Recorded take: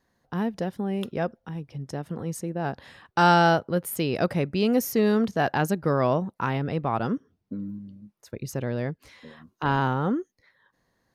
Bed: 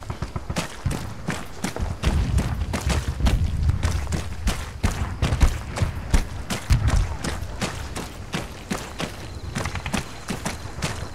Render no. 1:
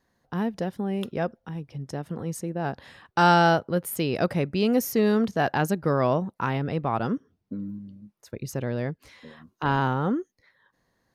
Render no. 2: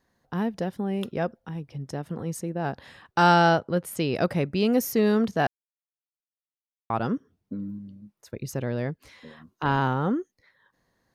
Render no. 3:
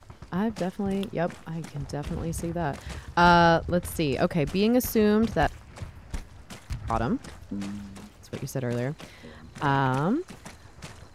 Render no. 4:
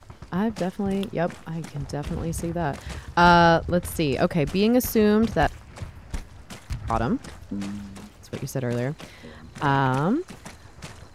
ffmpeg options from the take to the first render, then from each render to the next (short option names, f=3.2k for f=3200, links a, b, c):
-af anull
-filter_complex "[0:a]asettb=1/sr,asplit=3[a][b][c];[a]atrim=end=3.324[d];[b]atrim=start=3.32:end=4.15,asetpts=PTS-STARTPTS,afade=t=in:d=0.004:c=qsin,afade=t=out:st=0.826:d=0.004:c=qsin,lowpass=9.6k[e];[c]atrim=start=4.146[f];[d][e]acrossfade=d=0.004:c1=hsin:c2=qsin[g];[g][f]acrossfade=d=0.004:c1=qsin:c2=hsin,asplit=3[h][i][j];[h]atrim=end=5.47,asetpts=PTS-STARTPTS,afade=t=out:st=5.466:d=0.004:c=hsin[k];[i]atrim=start=5.47:end=6.9,asetpts=PTS-STARTPTS,volume=0[l];[j]atrim=start=6.9,asetpts=PTS-STARTPTS,afade=t=in:d=0.004:c=hsin[m];[k][l][m]concat=n=3:v=0:a=1"
-filter_complex "[1:a]volume=-15.5dB[a];[0:a][a]amix=inputs=2:normalize=0"
-af "volume=2.5dB"